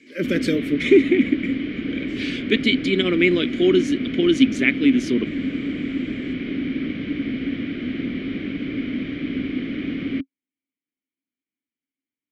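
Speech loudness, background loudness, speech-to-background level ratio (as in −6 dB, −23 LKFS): −20.0 LKFS, −27.0 LKFS, 7.0 dB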